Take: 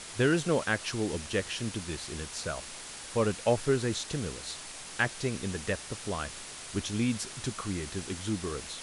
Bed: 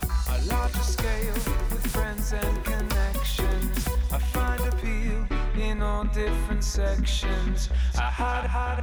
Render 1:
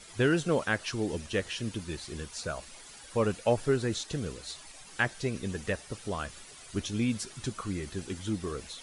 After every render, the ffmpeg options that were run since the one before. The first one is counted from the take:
-af "afftdn=nr=11:nf=-44"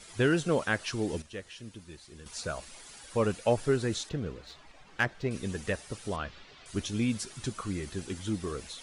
-filter_complex "[0:a]asettb=1/sr,asplit=3[a][b][c];[a]atrim=end=4.094[d];[b]atrim=start=4.09:end=5.31,asetpts=PTS-STARTPTS,afade=t=in:d=0.004:c=qsin,afade=t=out:st=1.216:d=0.004:c=qsin,adynamicsmooth=sensitivity=3:basefreq=2.7k[e];[c]atrim=start=5.306[f];[d][e]acrossfade=d=0.004:c1=hsin:c2=qsin[g];[g][f]acrossfade=d=0.004:c1=qsin:c2=hsin,asettb=1/sr,asplit=3[h][i][j];[h]atrim=end=6.164[k];[i]atrim=start=6.16:end=6.66,asetpts=PTS-STARTPTS,afade=t=in:d=0.004:c=qsin,afade=t=out:st=0.496:d=0.004:c=qsin,lowpass=f=4.4k:w=0.5412,lowpass=f=4.4k:w=1.3066[l];[j]atrim=start=6.656[m];[k][l]acrossfade=d=0.004:c1=hsin:c2=qsin[n];[n][m]acrossfade=d=0.004:c1=qsin:c2=hsin,asplit=3[o][p][q];[o]atrim=end=1.222[r];[p]atrim=start=1.218:end=2.262,asetpts=PTS-STARTPTS,volume=-10.5dB[s];[q]atrim=start=2.258[t];[r][s]acrossfade=d=0.004:c1=hsin:c2=hsin[u];[u][t]acrossfade=d=0.004:c1=hsin:c2=hsin"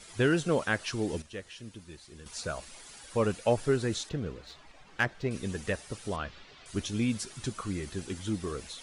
-af anull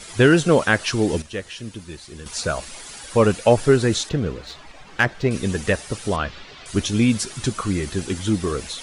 -af "volume=11.5dB,alimiter=limit=-3dB:level=0:latency=1"

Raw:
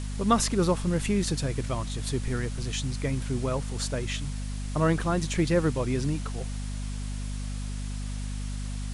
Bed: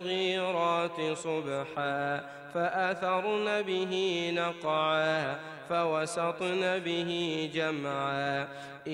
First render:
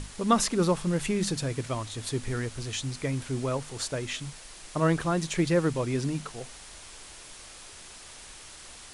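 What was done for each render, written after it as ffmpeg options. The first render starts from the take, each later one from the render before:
-af "bandreject=f=50:t=h:w=6,bandreject=f=100:t=h:w=6,bandreject=f=150:t=h:w=6,bandreject=f=200:t=h:w=6,bandreject=f=250:t=h:w=6"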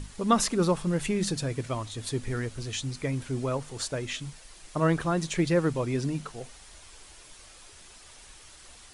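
-af "afftdn=nr=6:nf=-47"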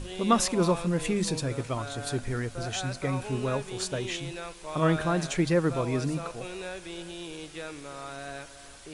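-filter_complex "[1:a]volume=-8.5dB[a];[0:a][a]amix=inputs=2:normalize=0"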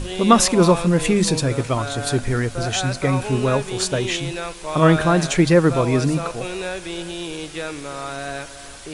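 -af "volume=10dB,alimiter=limit=-1dB:level=0:latency=1"

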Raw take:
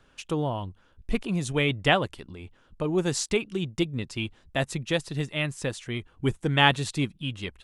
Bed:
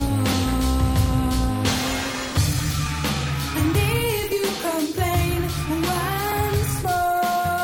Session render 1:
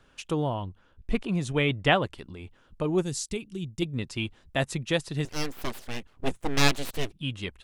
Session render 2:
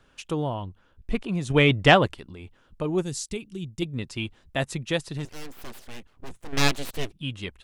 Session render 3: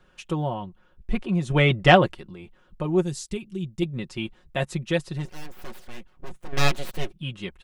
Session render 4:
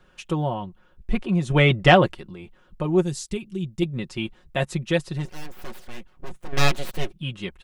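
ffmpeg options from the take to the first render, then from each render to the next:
-filter_complex "[0:a]asettb=1/sr,asplit=3[a][b][c];[a]atrim=end=0.544[d];[b]atrim=start=0.54:end=2.18,asetpts=PTS-STARTPTS,afade=t=in:d=0.004:c=qsin,afade=t=out:st=1.636:d=0.004:c=qsin,highshelf=f=5.9k:g=-8[e];[c]atrim=start=2.176[f];[d][e]acrossfade=d=0.004:c1=hsin:c2=qsin[g];[g][f]acrossfade=d=0.004:c1=qsin:c2=hsin,asplit=3[h][i][j];[h]afade=t=out:st=3.01:d=0.02[k];[i]equalizer=f=1.1k:w=0.33:g=-14.5,afade=t=in:st=3.01:d=0.02,afade=t=out:st=3.81:d=0.02[l];[j]afade=t=in:st=3.81:d=0.02[m];[k][l][m]amix=inputs=3:normalize=0,asettb=1/sr,asplit=3[n][o][p];[n]atrim=end=5.254[q];[o]atrim=start=5.25:end=7.13,asetpts=PTS-STARTPTS,afade=t=in:d=0.004:c=qsin,afade=t=out:st=1.876:d=0.004:c=qsin,aeval=exprs='abs(val(0))':c=same[r];[p]atrim=start=7.126[s];[q][r]acrossfade=d=0.004:c1=hsin:c2=qsin[t];[t][s]acrossfade=d=0.004:c1=qsin:c2=hsin"
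-filter_complex "[0:a]asettb=1/sr,asplit=3[a][b][c];[a]atrim=end=1.504[d];[b]atrim=start=1.5:end=2.14,asetpts=PTS-STARTPTS,afade=t=in:d=0.004:c=qsin,afade=t=out:st=0.636:d=0.004:c=qsin,acontrast=73[e];[c]atrim=start=2.136[f];[d][e]acrossfade=d=0.004:c1=hsin:c2=qsin[g];[g][f]acrossfade=d=0.004:c1=qsin:c2=hsin,asettb=1/sr,asplit=3[h][i][j];[h]atrim=end=5.174[k];[i]atrim=start=5.17:end=6.53,asetpts=PTS-STARTPTS,afade=t=in:d=0.004:c=qsin,afade=t=out:st=1.356:d=0.004:c=qsin,aeval=exprs='(tanh(20*val(0)+0.35)-tanh(0.35))/20':c=same[l];[j]atrim=start=6.526[m];[k][l]acrossfade=d=0.004:c1=hsin:c2=qsin[n];[n][m]acrossfade=d=0.004:c1=qsin:c2=hsin"
-af "equalizer=f=9k:t=o:w=2.7:g=-5.5,aecho=1:1:5.5:0.64"
-af "volume=2dB,alimiter=limit=-3dB:level=0:latency=1"

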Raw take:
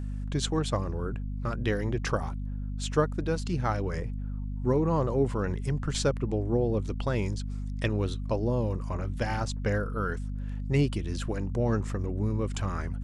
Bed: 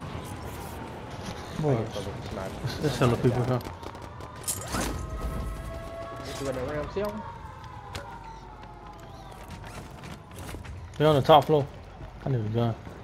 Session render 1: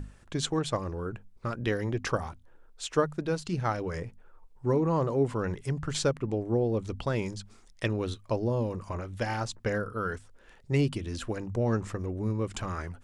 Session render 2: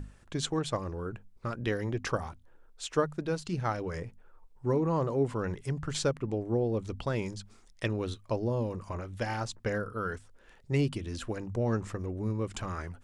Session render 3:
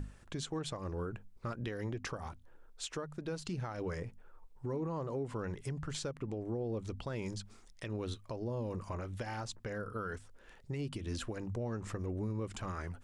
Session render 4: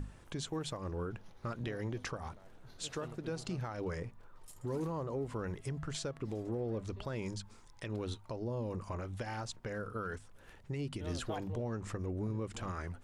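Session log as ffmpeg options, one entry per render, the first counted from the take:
-af "bandreject=f=50:t=h:w=6,bandreject=f=100:t=h:w=6,bandreject=f=150:t=h:w=6,bandreject=f=200:t=h:w=6,bandreject=f=250:t=h:w=6"
-af "volume=-2dB"
-af "acompressor=threshold=-30dB:ratio=6,alimiter=level_in=6dB:limit=-24dB:level=0:latency=1:release=156,volume=-6dB"
-filter_complex "[1:a]volume=-26dB[a];[0:a][a]amix=inputs=2:normalize=0"

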